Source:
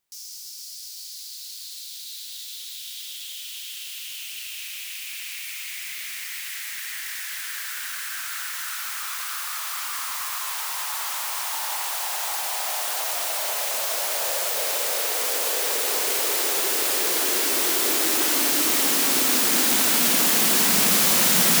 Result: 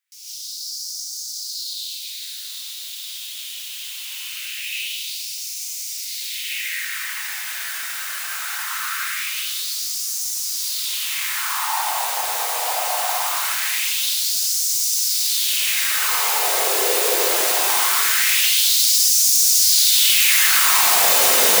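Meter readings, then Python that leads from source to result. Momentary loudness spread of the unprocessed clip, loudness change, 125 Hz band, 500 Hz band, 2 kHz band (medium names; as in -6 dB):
18 LU, +4.0 dB, no reading, +2.5 dB, +5.0 dB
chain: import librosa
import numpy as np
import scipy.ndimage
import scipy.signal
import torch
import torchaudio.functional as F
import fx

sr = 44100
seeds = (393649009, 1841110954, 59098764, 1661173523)

y = fx.rev_gated(x, sr, seeds[0], gate_ms=190, shape='rising', drr_db=-8.0)
y = fx.filter_lfo_highpass(y, sr, shape='sine', hz=0.22, low_hz=490.0, high_hz=5800.0, q=2.5)
y = y * 10.0 ** (-5.0 / 20.0)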